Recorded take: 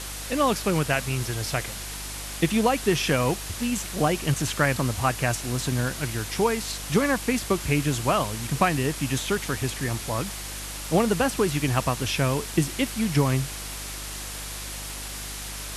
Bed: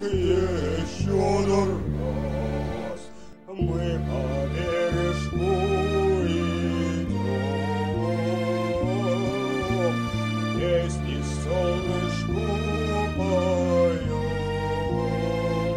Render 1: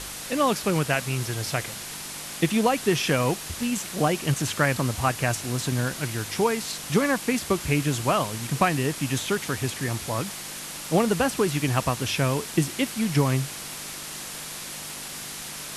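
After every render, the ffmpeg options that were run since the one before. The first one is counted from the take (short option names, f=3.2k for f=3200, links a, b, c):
-af "bandreject=f=50:t=h:w=4,bandreject=f=100:t=h:w=4"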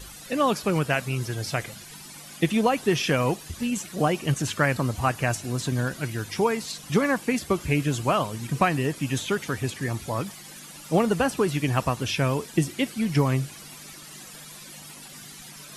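-af "afftdn=nr=13:nf=-37"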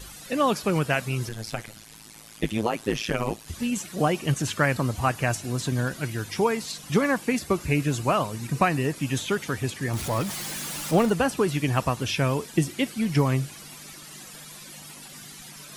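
-filter_complex "[0:a]asettb=1/sr,asplit=3[a][b][c];[a]atrim=end=1.294[d];[b]atrim=start=1.29:end=3.48,asetpts=PTS-STARTPTS,afade=t=in:d=0.004:c=qsin,afade=t=out:st=2.186:d=0.004:c=qsin,tremolo=f=110:d=1[e];[c]atrim=start=3.476[f];[d][e]acrossfade=d=0.004:c1=hsin:c2=qsin[g];[g][f]acrossfade=d=0.004:c1=qsin:c2=hsin,asettb=1/sr,asplit=3[h][i][j];[h]atrim=end=7.394[k];[i]atrim=start=7.39:end=8.96,asetpts=PTS-STARTPTS,afade=t=in:d=0.004:c=qsin,afade=t=out:st=1.566:d=0.004:c=qsin,bandreject=f=3.2k:w=10[l];[j]atrim=start=8.956[m];[k][l]acrossfade=d=0.004:c1=hsin:c2=qsin[n];[n][m]acrossfade=d=0.004:c1=qsin:c2=hsin,asettb=1/sr,asplit=3[o][p][q];[o]atrim=end=9.934[r];[p]atrim=start=9.93:end=11.1,asetpts=PTS-STARTPTS,afade=t=in:d=0.004:c=qsin,afade=t=out:st=1.166:d=0.004:c=qsin,aeval=exprs='val(0)+0.5*0.0316*sgn(val(0))':c=same[s];[q]atrim=start=11.096[t];[r][s]acrossfade=d=0.004:c1=hsin:c2=qsin[u];[u][t]acrossfade=d=0.004:c1=qsin:c2=hsin"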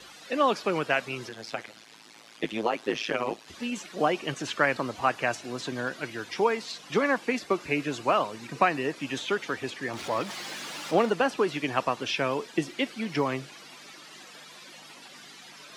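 -filter_complex "[0:a]highpass=f=170:p=1,acrossover=split=240 5700:gain=0.2 1 0.126[a][b][c];[a][b][c]amix=inputs=3:normalize=0"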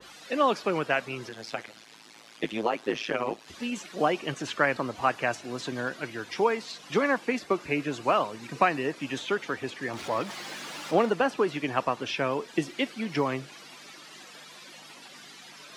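-af "adynamicequalizer=threshold=0.01:dfrequency=2300:dqfactor=0.7:tfrequency=2300:tqfactor=0.7:attack=5:release=100:ratio=0.375:range=2:mode=cutabove:tftype=highshelf"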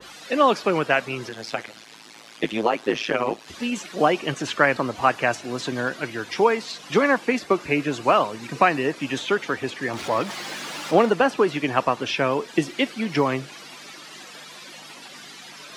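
-af "volume=6dB,alimiter=limit=-2dB:level=0:latency=1"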